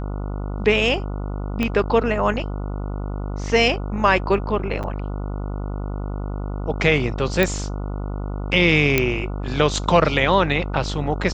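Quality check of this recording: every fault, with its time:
buzz 50 Hz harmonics 29 -27 dBFS
1.63 s: pop -9 dBFS
4.83–4.84 s: dropout 6.8 ms
7.43 s: pop -5 dBFS
8.98 s: pop -2 dBFS

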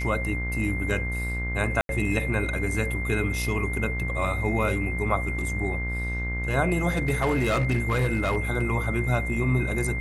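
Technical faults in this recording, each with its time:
buzz 60 Hz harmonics 34 -30 dBFS
whine 2.1 kHz -31 dBFS
1.81–1.89 s: dropout 82 ms
6.97–8.38 s: clipped -18.5 dBFS

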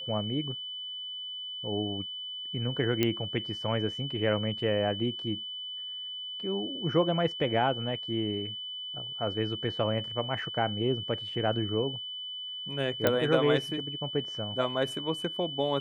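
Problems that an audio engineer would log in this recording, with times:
whine 3 kHz -36 dBFS
3.03 s: pop -12 dBFS
13.07 s: pop -10 dBFS

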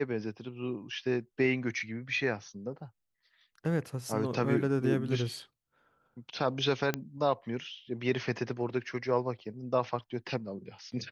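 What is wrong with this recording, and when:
6.94 s: pop -15 dBFS

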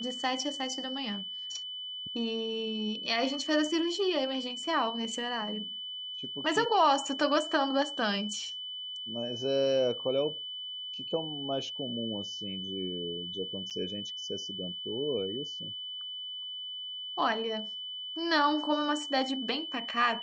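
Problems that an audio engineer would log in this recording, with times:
whine 3 kHz -37 dBFS
13.70–13.71 s: dropout 7.5 ms

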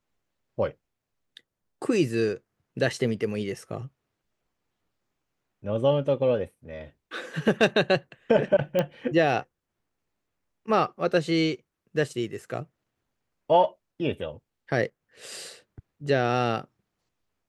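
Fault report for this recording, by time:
8.79 s: pop -12 dBFS

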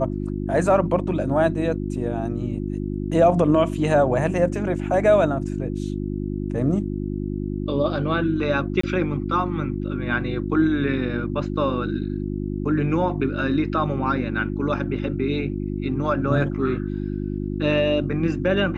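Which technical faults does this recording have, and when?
hum 50 Hz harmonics 7 -27 dBFS
8.81–8.83 s: dropout 24 ms

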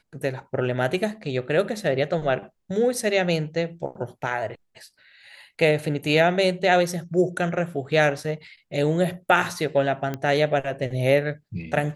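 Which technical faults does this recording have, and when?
10.14 s: pop -16 dBFS

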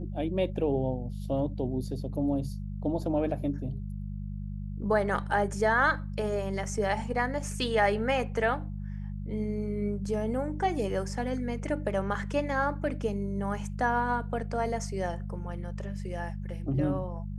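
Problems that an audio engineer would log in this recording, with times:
hum 50 Hz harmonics 4 -36 dBFS

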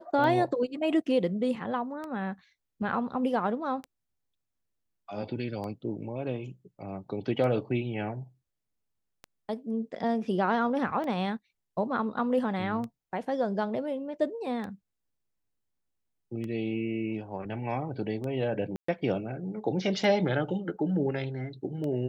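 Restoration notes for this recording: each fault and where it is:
tick 33 1/3 rpm -25 dBFS
18.76–18.88 s: dropout 124 ms

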